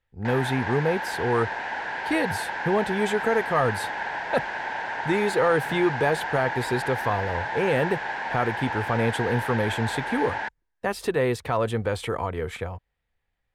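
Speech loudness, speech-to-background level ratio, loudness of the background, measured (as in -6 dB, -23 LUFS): -26.5 LUFS, 3.5 dB, -30.0 LUFS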